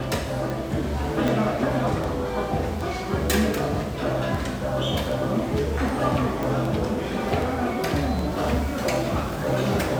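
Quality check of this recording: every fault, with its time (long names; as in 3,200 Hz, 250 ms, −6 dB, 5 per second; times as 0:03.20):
scratch tick
0:01.28: click
0:06.43: click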